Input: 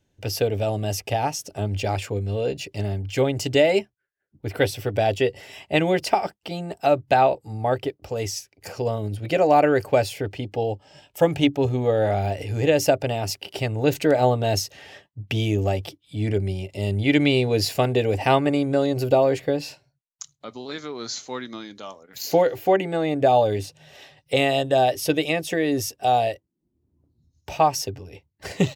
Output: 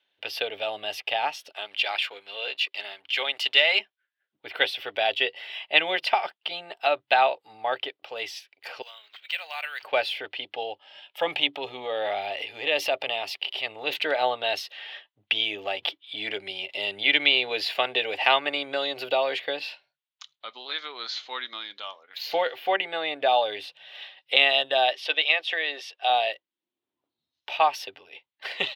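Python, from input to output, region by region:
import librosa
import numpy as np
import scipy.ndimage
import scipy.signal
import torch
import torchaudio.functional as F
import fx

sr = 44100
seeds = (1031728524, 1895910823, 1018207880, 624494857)

y = fx.chain(x, sr, fx.highpass(hz=1300.0, slope=6),
    fx.leveller(passes=1), at=(1.52, 3.8))
y = fx.chain(y, sr, fx.bessel_highpass(hz=2800.0, order=2),
    fx.resample_bad(factor=4, down='none', up='hold'), at=(8.82, 9.83))
y = fx.chain(y, sr, fx.peak_eq(hz=1500.0, db=-9.0, octaves=0.27),
    fx.transient(attack_db=-5, sustain_db=4), at=(11.22, 13.96))
y = fx.chain(y, sr, fx.peak_eq(hz=6800.0, db=3.5, octaves=0.23),
    fx.band_squash(depth_pct=40), at=(15.82, 19.6))
y = fx.chain(y, sr, fx.bandpass_edges(low_hz=490.0, high_hz=6200.0),
    fx.clip_hard(threshold_db=-11.5), at=(24.93, 26.1))
y = scipy.signal.sosfilt(scipy.signal.butter(2, 900.0, 'highpass', fs=sr, output='sos'), y)
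y = fx.high_shelf_res(y, sr, hz=4900.0, db=-13.0, q=3.0)
y = F.gain(torch.from_numpy(y), 1.5).numpy()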